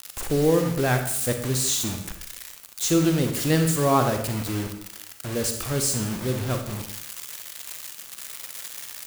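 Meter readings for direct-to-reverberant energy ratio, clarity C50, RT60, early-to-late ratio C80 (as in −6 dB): 5.0 dB, 6.5 dB, 0.75 s, 9.5 dB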